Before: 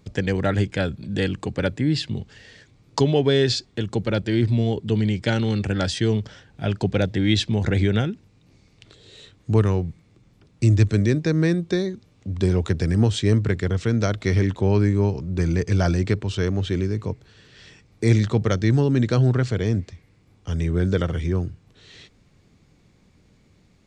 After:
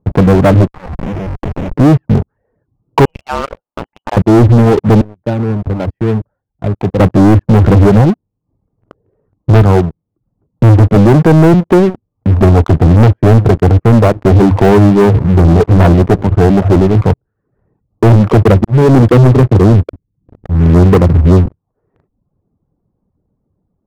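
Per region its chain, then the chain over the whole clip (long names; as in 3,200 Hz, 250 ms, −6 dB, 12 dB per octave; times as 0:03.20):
0:00.67–0:01.74: low-pass filter 1,500 Hz 24 dB per octave + downward compressor 10 to 1, threshold −32 dBFS + comparator with hysteresis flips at −38 dBFS
0:03.05–0:04.17: voice inversion scrambler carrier 3,100 Hz + saturating transformer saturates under 1,100 Hz
0:05.01–0:07.00: downward compressor 2 to 1, threshold −43 dBFS + low-shelf EQ 130 Hz +2.5 dB + multiband upward and downward expander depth 100%
0:10.96–0:11.54: high-pass filter 88 Hz 24 dB per octave + transient designer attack 0 dB, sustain +6 dB
0:14.08–0:17.04: mains-hum notches 50/100/150 Hz + single-tap delay 815 ms −19 dB
0:18.32–0:21.46: spectral envelope exaggerated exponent 2 + volume swells 361 ms + multiband upward and downward compressor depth 40%
whole clip: reverb reduction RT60 0.67 s; inverse Chebyshev low-pass filter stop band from 3,400 Hz, stop band 60 dB; leveller curve on the samples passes 5; level +4.5 dB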